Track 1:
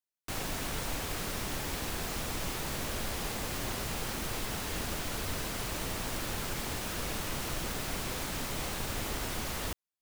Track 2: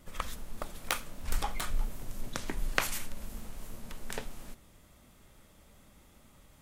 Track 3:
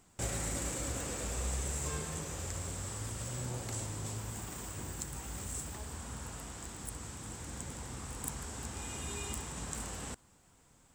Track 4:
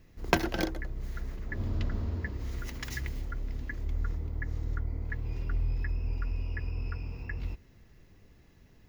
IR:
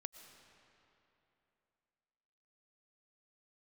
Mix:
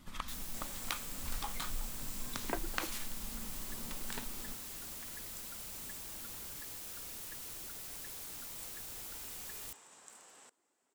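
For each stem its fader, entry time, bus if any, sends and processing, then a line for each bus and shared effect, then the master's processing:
-6.5 dB, 0.00 s, no send, pre-emphasis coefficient 0.8
-2.5 dB, 0.00 s, no send, graphic EQ 250/500/1000/4000 Hz +7/-10/+6/+6 dB; compressor 2:1, threshold -37 dBFS, peak gain reduction 10.5 dB
-13.5 dB, 0.35 s, no send, HPF 490 Hz 12 dB/oct
-11.0 dB, 2.20 s, no send, inverse Chebyshev high-pass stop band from 150 Hz, stop band 40 dB; reverb removal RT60 1.7 s; LPF 1500 Hz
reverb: off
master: dry

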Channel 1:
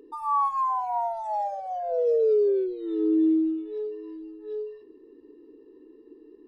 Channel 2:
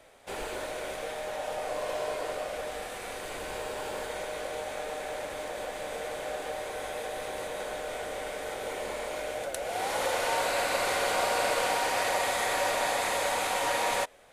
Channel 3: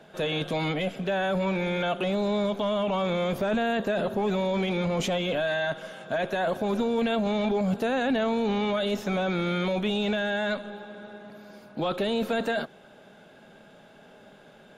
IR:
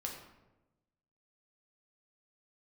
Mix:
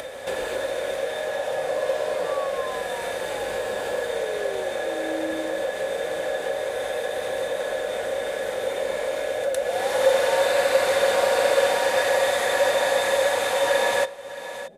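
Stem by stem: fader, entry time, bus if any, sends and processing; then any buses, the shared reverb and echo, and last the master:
-12.5 dB, 2.00 s, no send, no echo send, dry
+0.5 dB, 0.00 s, send -11 dB, echo send -21 dB, HPF 55 Hz; small resonant body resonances 530/1700/3600 Hz, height 15 dB, ringing for 65 ms
-9.5 dB, 1.20 s, no send, no echo send, negative-ratio compressor -34 dBFS; ladder low-pass 680 Hz, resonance 60%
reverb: on, RT60 1.0 s, pre-delay 5 ms
echo: echo 0.625 s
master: upward compressor, threshold -23 dBFS

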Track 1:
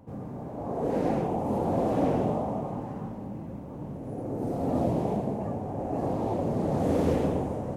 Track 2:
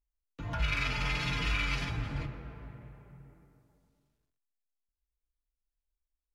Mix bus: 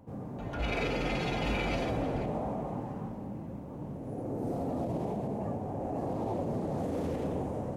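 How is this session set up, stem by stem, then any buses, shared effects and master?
-2.5 dB, 0.00 s, no send, limiter -23 dBFS, peak gain reduction 9 dB
-4.0 dB, 0.00 s, no send, notch 5200 Hz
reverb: off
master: dry

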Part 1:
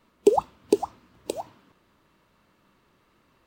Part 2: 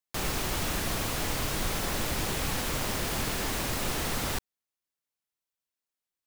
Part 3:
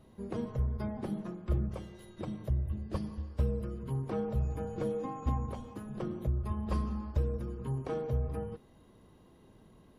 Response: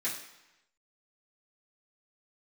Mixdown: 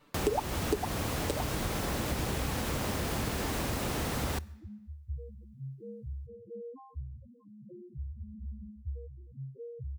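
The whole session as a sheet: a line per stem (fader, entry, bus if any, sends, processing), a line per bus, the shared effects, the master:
-1.0 dB, 0.00 s, no send, comb 6.8 ms, depth 96%; limiter -6.5 dBFS, peak gain reduction 5.5 dB
+1.5 dB, 0.00 s, send -23.5 dB, HPF 46 Hz; tilt shelf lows +3.5 dB, about 1200 Hz
-6.0 dB, 1.70 s, no send, spectral gate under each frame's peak -15 dB strong; HPF 72 Hz 12 dB/oct; loudest bins only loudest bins 2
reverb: on, RT60 0.95 s, pre-delay 3 ms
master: bell 72 Hz +4 dB 0.62 oct; compressor 2.5:1, threshold -31 dBFS, peak gain reduction 12 dB

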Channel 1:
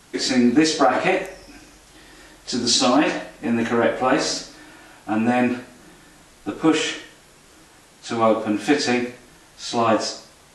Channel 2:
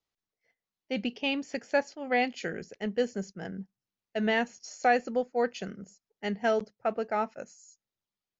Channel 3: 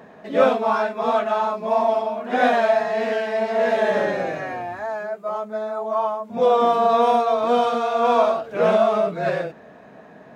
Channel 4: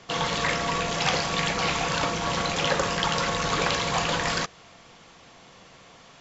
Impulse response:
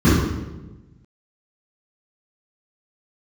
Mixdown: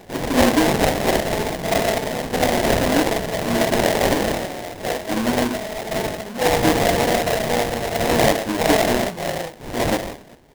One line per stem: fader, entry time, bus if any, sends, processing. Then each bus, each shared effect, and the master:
-2.0 dB, 0.00 s, no send, no echo send, dry
-3.5 dB, 0.00 s, no send, no echo send, dry
-2.0 dB, 0.00 s, no send, echo send -14.5 dB, dry
0.0 dB, 0.00 s, no send, no echo send, LPF 4500 Hz 12 dB/oct; compressor 2:1, threshold -29 dBFS, peak gain reduction 6 dB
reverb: off
echo: feedback echo 66 ms, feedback 35%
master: sample-rate reducer 1300 Hz, jitter 20%

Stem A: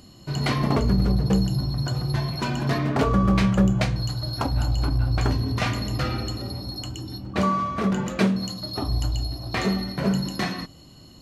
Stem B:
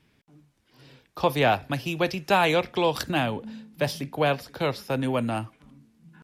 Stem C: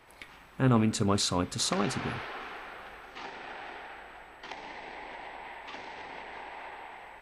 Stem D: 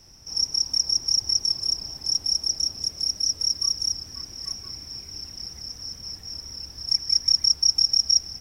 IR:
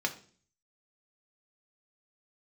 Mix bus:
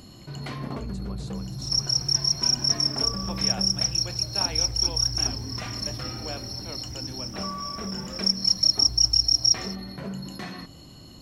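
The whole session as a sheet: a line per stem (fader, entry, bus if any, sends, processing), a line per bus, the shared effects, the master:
-15.0 dB, 0.00 s, no send, fast leveller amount 50%
-19.5 dB, 2.05 s, send -8.5 dB, dry
-18.5 dB, 0.00 s, no send, dry
-0.5 dB, 1.35 s, no send, dry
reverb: on, RT60 0.45 s, pre-delay 3 ms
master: dry

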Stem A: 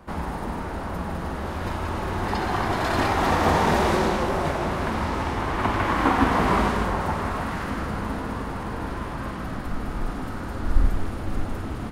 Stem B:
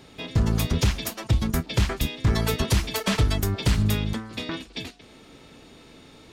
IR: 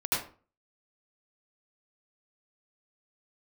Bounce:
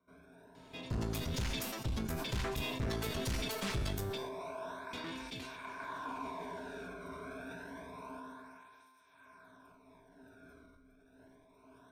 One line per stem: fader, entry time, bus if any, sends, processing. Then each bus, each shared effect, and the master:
4.02 s -18.5 dB -> 4.36 s -7.5 dB -> 8.13 s -7.5 dB -> 8.48 s -16.5 dB, 0.00 s, no send, ripple EQ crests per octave 1.6, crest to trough 16 dB; compressor 5:1, threshold -22 dBFS, peak gain reduction 13 dB; tape flanging out of phase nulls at 0.28 Hz, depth 1.2 ms
-2.5 dB, 0.55 s, muted 4.18–4.93, no send, one-sided clip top -28 dBFS, bottom -17 dBFS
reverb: off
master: resonator 130 Hz, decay 0.77 s, harmonics all, mix 70%; sustainer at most 25 dB/s

